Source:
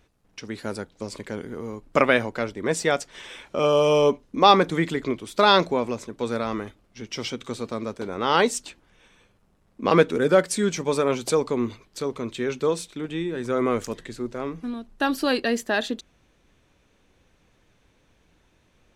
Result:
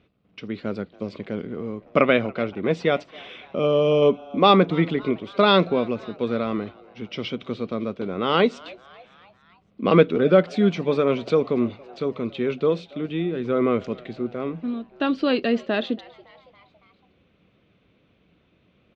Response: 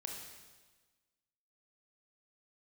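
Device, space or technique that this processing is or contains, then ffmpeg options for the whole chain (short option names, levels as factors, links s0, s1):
frequency-shifting delay pedal into a guitar cabinet: -filter_complex "[0:a]asettb=1/sr,asplit=3[s0][s1][s2];[s0]atrim=end=3.474[s3];[s1]atrim=start=3.47:end=4.02,asetpts=PTS-STARTPTS,afade=t=in:d=0.004:c=qsin,afade=t=out:st=0.546:d=0.004:c=qsin,equalizer=f=1700:w=0.43:g=-5[s4];[s2]atrim=start=4.016[s5];[s3][s4]acrossfade=d=0.004:c1=hsin:c2=qsin[s6];[s6][s5]acrossfade=d=0.004:c1=qsin:c2=hsin,asplit=5[s7][s8][s9][s10][s11];[s8]adelay=280,afreqshift=130,volume=0.0708[s12];[s9]adelay=560,afreqshift=260,volume=0.0432[s13];[s10]adelay=840,afreqshift=390,volume=0.0263[s14];[s11]adelay=1120,afreqshift=520,volume=0.016[s15];[s7][s12][s13][s14][s15]amix=inputs=5:normalize=0,highpass=86,equalizer=f=190:t=q:w=4:g=5,equalizer=f=890:t=q:w=4:g=-10,equalizer=f=1700:t=q:w=4:g=-9,lowpass=f=3500:w=0.5412,lowpass=f=3500:w=1.3066,volume=1.33"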